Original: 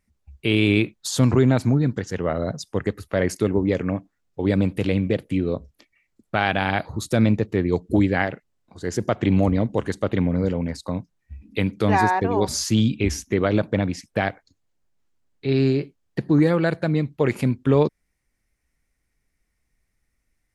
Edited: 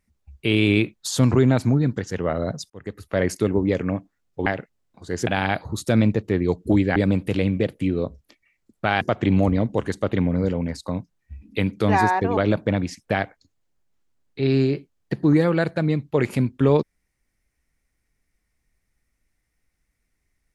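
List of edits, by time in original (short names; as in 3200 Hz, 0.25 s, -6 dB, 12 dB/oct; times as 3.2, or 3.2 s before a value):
2.7–3.17 fade in
4.46–6.51 swap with 8.2–9.01
12.37–13.43 cut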